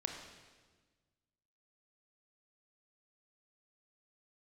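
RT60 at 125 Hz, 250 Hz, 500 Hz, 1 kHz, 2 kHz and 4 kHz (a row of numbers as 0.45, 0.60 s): 2.0, 1.8, 1.5, 1.3, 1.3, 1.3 s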